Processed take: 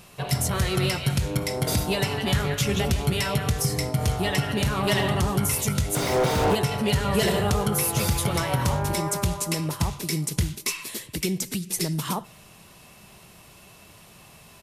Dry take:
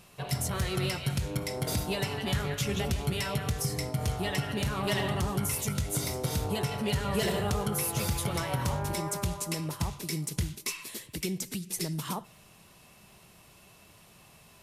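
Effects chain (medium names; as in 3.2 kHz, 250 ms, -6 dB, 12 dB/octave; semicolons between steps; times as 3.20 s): resampled via 32 kHz; 5.95–6.55 s: overdrive pedal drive 35 dB, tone 1.2 kHz, clips at -19 dBFS; trim +6.5 dB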